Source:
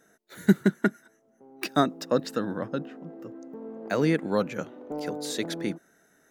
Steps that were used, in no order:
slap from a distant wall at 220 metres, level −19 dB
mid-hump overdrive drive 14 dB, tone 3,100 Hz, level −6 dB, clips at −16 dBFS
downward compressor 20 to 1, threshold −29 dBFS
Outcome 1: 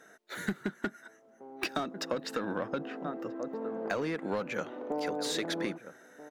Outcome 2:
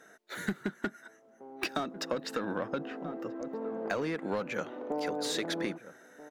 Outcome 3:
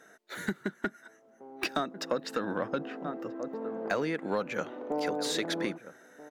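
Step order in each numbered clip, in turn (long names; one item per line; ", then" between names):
slap from a distant wall, then mid-hump overdrive, then downward compressor
mid-hump overdrive, then slap from a distant wall, then downward compressor
slap from a distant wall, then downward compressor, then mid-hump overdrive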